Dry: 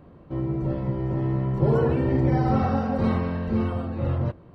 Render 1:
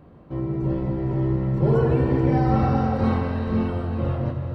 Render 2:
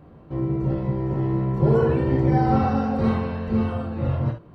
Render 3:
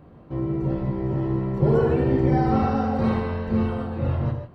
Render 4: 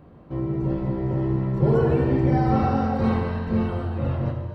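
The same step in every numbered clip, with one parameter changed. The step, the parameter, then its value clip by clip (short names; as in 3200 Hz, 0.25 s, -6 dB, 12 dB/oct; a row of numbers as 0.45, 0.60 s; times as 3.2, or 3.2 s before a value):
non-linear reverb, gate: 480, 90, 180, 290 ms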